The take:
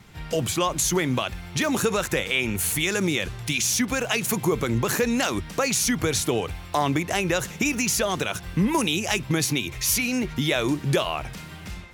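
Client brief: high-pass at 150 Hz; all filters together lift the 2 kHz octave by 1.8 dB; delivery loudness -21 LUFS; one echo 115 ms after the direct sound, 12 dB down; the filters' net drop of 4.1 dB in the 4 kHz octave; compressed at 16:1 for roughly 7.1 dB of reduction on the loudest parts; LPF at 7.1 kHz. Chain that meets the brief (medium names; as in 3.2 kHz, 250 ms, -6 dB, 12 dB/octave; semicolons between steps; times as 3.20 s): high-pass 150 Hz; low-pass 7.1 kHz; peaking EQ 2 kHz +4.5 dB; peaking EQ 4 kHz -7 dB; compression 16:1, threshold -25 dBFS; delay 115 ms -12 dB; trim +9 dB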